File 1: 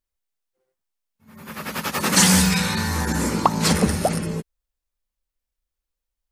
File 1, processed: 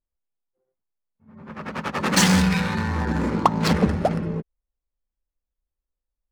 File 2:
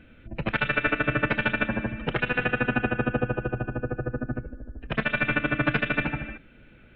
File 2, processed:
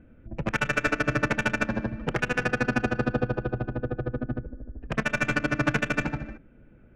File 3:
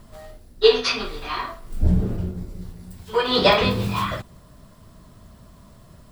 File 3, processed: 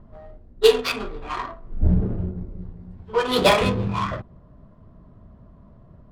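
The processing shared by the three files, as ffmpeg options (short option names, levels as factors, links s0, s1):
-af "adynamicsmooth=sensitivity=1.5:basefreq=1100"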